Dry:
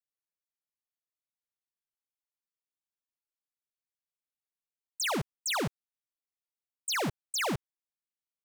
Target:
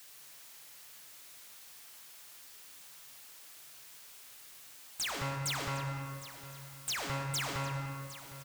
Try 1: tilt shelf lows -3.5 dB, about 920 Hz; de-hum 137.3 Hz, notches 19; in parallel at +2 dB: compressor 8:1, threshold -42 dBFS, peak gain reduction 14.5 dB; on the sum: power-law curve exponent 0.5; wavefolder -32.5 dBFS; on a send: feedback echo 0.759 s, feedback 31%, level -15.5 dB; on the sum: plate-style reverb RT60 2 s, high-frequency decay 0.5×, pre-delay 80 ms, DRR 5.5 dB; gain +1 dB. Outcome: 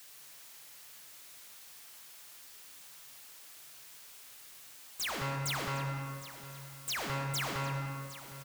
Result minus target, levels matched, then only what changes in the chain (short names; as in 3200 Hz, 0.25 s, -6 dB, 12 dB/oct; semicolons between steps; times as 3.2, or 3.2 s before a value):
compressor: peak gain reduction -7 dB
change: compressor 8:1, threshold -50 dBFS, peak gain reduction 21.5 dB